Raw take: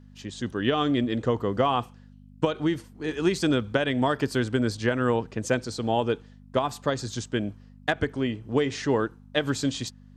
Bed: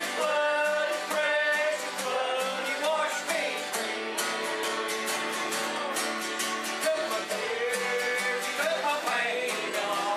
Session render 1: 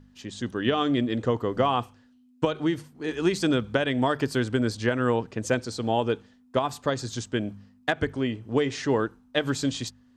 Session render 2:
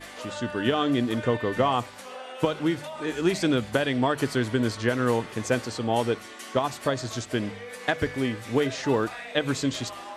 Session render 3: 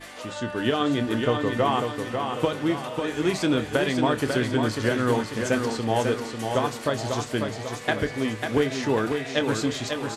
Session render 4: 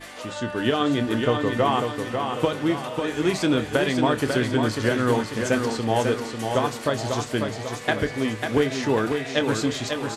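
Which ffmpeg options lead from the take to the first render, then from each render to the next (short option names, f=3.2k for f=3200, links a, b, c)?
-af "bandreject=f=50:t=h:w=4,bandreject=f=100:t=h:w=4,bandreject=f=150:t=h:w=4,bandreject=f=200:t=h:w=4"
-filter_complex "[1:a]volume=-11dB[a];[0:a][a]amix=inputs=2:normalize=0"
-filter_complex "[0:a]asplit=2[a][b];[b]adelay=27,volume=-12dB[c];[a][c]amix=inputs=2:normalize=0,aecho=1:1:545|1090|1635|2180|2725|3270:0.531|0.255|0.122|0.0587|0.0282|0.0135"
-af "volume=1.5dB"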